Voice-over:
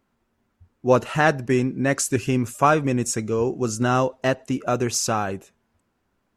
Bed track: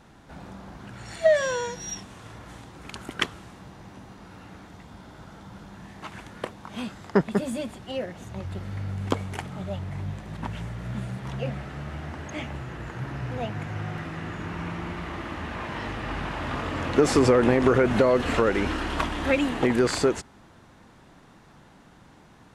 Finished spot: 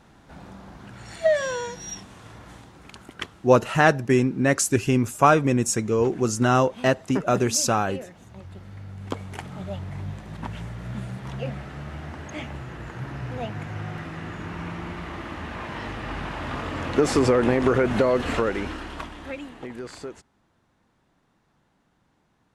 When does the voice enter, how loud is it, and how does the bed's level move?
2.60 s, +1.0 dB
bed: 0:02.51 −1 dB
0:03.15 −7.5 dB
0:08.92 −7.5 dB
0:09.51 −0.5 dB
0:18.32 −0.5 dB
0:19.55 −14.5 dB

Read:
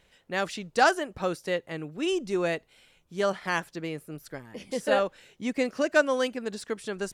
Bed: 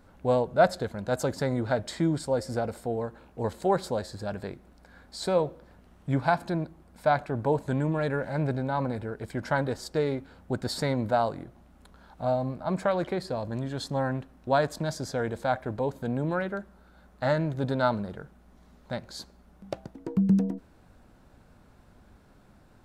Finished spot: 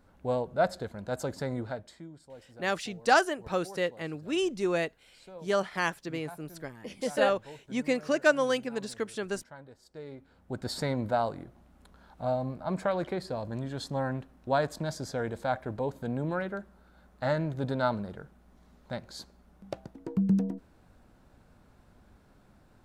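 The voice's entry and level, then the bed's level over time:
2.30 s, −1.0 dB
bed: 0:01.60 −5.5 dB
0:02.09 −22 dB
0:09.77 −22 dB
0:10.70 −3 dB

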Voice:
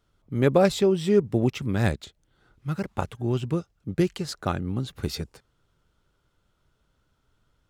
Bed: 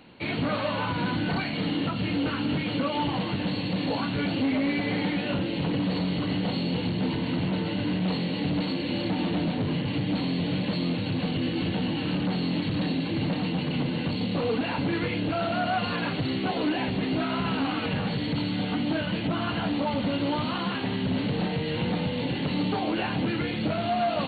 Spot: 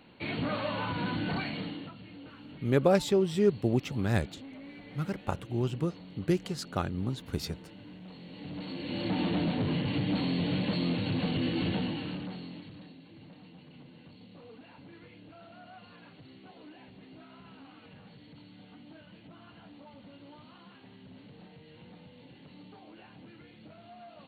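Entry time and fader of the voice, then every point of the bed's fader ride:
2.30 s, −4.5 dB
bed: 0:01.50 −5 dB
0:02.04 −21 dB
0:08.13 −21 dB
0:09.15 −2.5 dB
0:11.73 −2.5 dB
0:12.96 −24.5 dB

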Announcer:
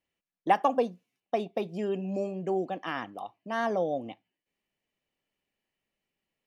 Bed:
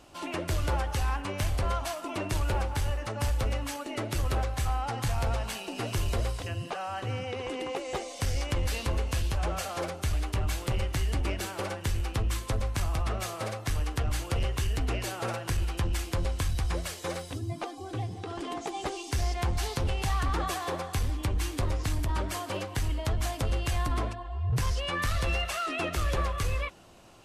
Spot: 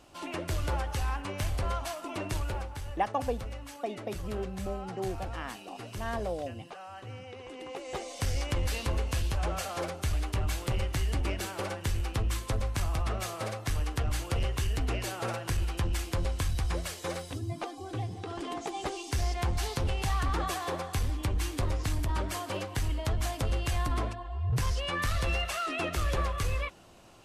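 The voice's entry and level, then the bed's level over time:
2.50 s, −6.0 dB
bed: 0:02.31 −2.5 dB
0:02.81 −10 dB
0:07.50 −10 dB
0:08.11 −1 dB

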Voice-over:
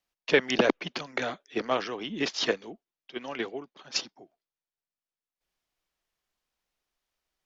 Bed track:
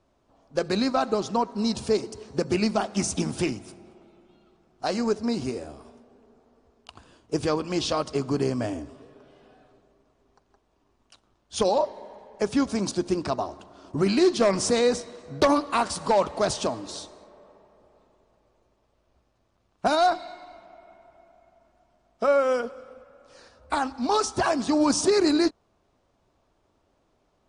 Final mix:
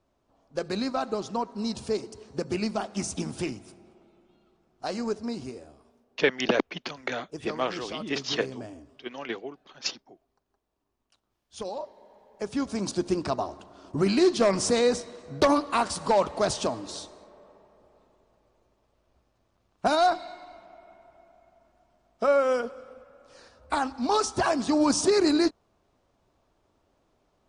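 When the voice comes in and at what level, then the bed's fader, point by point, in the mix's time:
5.90 s, −1.0 dB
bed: 0:05.18 −5 dB
0:05.88 −12.5 dB
0:11.96 −12.5 dB
0:13.01 −1 dB

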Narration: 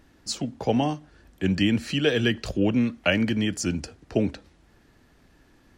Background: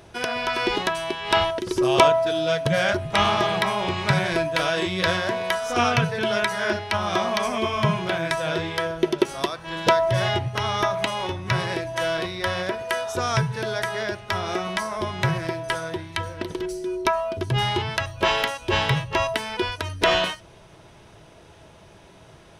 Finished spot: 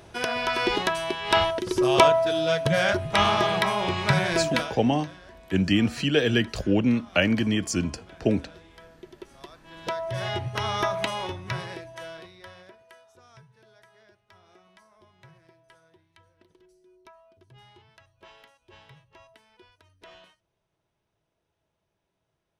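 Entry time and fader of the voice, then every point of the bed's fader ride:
4.10 s, +0.5 dB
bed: 0:04.56 −1 dB
0:04.83 −24.5 dB
0:09.12 −24.5 dB
0:10.54 −3 dB
0:11.16 −3 dB
0:13.21 −30.5 dB

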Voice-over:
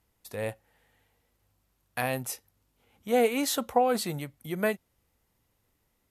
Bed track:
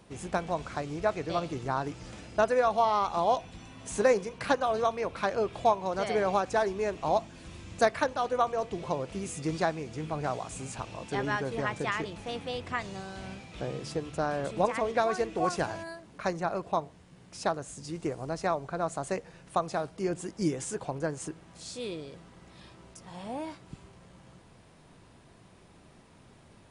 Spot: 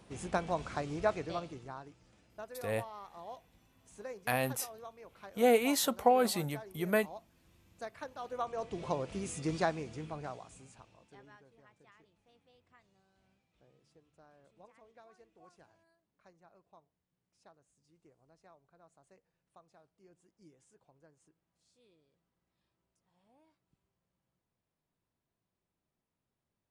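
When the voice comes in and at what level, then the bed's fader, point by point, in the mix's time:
2.30 s, −2.0 dB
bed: 0:01.11 −2.5 dB
0:02.03 −21 dB
0:07.75 −21 dB
0:08.85 −3 dB
0:09.79 −3 dB
0:11.59 −32 dB

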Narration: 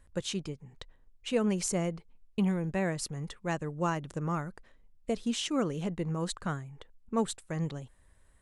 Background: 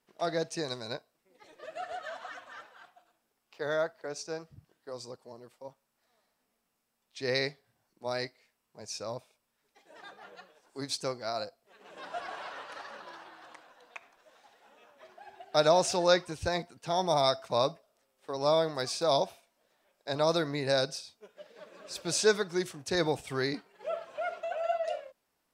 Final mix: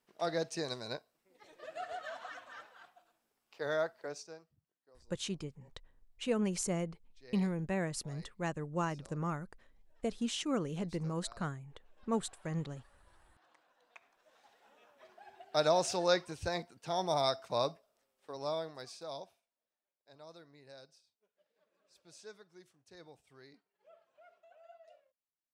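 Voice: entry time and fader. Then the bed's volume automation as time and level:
4.95 s, −4.0 dB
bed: 0:04.08 −3 dB
0:04.61 −23.5 dB
0:12.97 −23.5 dB
0:14.44 −5 dB
0:18.00 −5 dB
0:19.96 −26.5 dB

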